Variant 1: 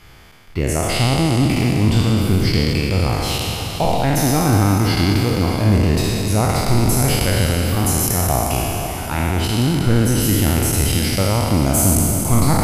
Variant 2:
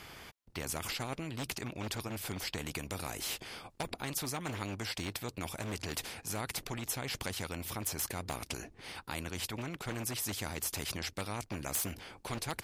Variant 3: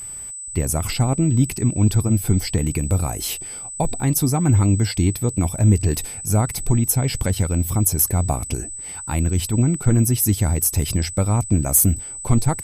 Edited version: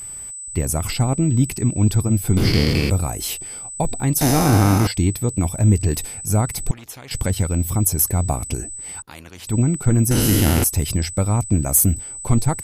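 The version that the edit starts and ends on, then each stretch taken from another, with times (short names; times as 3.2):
3
2.37–2.9 from 1
4.21–4.87 from 1
6.71–7.11 from 2
9.02–9.47 from 2
10.11–10.64 from 1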